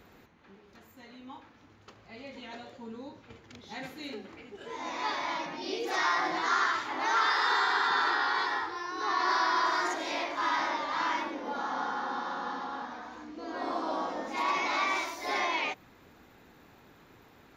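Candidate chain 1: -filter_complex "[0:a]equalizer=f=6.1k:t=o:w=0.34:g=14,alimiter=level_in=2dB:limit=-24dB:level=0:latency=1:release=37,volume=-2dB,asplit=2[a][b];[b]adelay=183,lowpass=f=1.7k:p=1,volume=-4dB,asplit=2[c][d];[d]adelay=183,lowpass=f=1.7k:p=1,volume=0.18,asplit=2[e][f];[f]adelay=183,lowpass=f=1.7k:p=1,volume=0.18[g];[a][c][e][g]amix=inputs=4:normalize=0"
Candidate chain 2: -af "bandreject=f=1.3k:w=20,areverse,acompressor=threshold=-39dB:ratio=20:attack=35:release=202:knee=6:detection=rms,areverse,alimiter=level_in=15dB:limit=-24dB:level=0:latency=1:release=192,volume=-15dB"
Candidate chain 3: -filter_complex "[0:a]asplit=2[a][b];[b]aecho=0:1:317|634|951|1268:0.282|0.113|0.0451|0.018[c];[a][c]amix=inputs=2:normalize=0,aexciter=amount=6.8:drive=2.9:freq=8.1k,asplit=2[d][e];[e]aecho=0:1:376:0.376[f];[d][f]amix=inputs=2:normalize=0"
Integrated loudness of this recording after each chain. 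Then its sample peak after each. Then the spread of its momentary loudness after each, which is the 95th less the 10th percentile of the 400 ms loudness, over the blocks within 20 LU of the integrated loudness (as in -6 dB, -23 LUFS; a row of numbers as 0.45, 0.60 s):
-34.5, -48.5, -29.5 LUFS; -22.5, -39.0, -15.0 dBFS; 15, 10, 20 LU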